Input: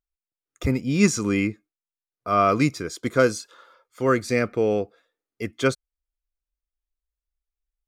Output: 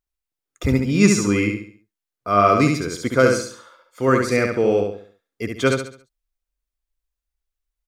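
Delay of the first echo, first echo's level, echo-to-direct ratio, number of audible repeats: 69 ms, -4.0 dB, -3.5 dB, 4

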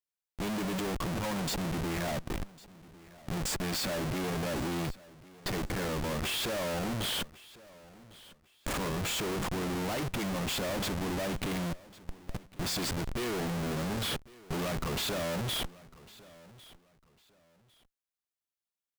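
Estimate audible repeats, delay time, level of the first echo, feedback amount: 2, 1102 ms, -21.0 dB, 25%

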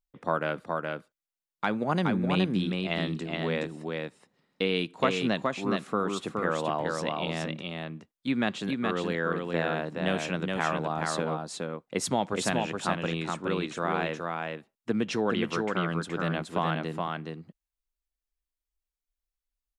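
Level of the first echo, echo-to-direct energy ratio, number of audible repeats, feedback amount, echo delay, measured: -3.5 dB, -3.5 dB, 1, no regular repeats, 420 ms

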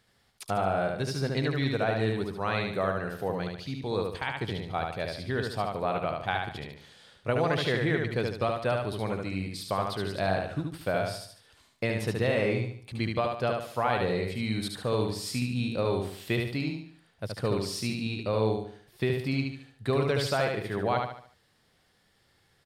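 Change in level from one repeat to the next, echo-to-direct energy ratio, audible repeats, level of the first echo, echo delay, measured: -8.0 dB, -2.5 dB, 4, -3.5 dB, 73 ms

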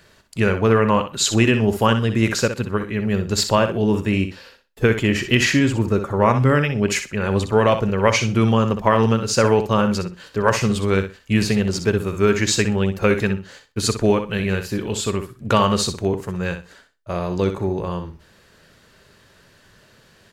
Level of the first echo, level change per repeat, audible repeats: -9.0 dB, -14.5 dB, 2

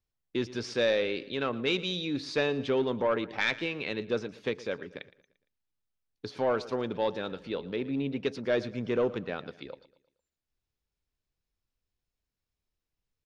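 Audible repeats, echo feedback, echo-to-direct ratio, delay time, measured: 3, 43%, -17.0 dB, 115 ms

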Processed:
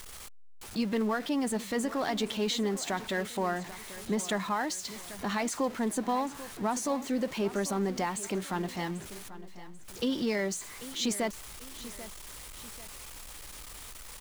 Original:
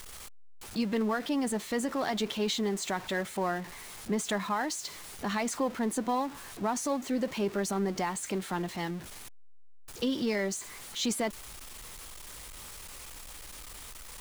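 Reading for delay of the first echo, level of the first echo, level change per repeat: 790 ms, -15.5 dB, -8.0 dB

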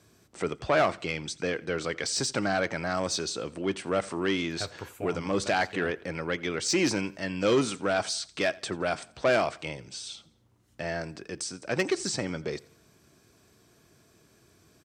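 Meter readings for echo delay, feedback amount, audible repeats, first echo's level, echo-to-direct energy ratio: 86 ms, 43%, 2, -23.0 dB, -22.0 dB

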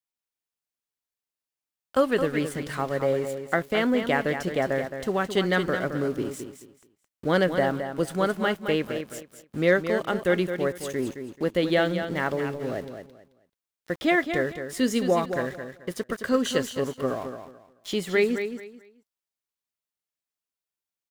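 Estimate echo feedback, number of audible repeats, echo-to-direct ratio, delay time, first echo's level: 24%, 3, -8.0 dB, 217 ms, -8.5 dB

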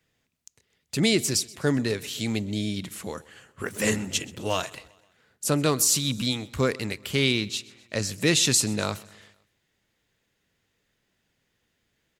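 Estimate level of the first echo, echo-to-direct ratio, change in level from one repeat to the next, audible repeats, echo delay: -22.0 dB, -20.5 dB, -5.5 dB, 3, 128 ms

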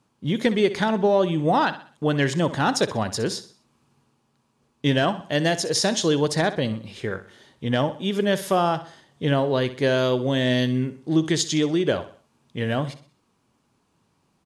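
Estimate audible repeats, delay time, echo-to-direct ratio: 3, 63 ms, -13.5 dB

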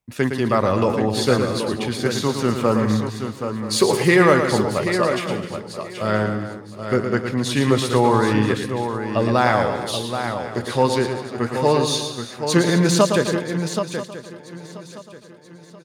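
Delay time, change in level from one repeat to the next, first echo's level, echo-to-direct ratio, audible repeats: 112 ms, no regular repeats, -7.0 dB, -3.0 dB, 15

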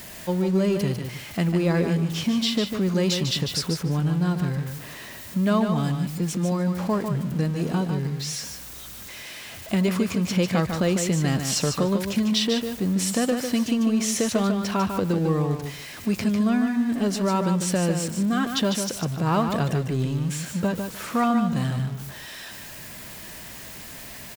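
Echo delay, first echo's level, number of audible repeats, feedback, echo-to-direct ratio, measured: 149 ms, -6.5 dB, 2, 17%, -6.5 dB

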